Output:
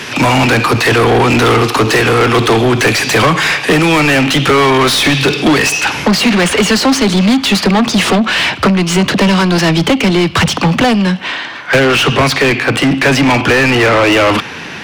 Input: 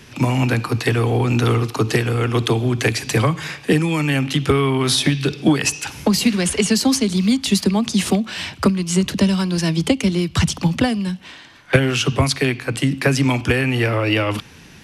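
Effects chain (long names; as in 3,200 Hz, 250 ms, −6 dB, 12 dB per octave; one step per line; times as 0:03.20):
high-shelf EQ 5,500 Hz +2 dB, from 0:05.81 −10.5 dB
mid-hump overdrive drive 31 dB, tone 3,000 Hz, clips at −1.5 dBFS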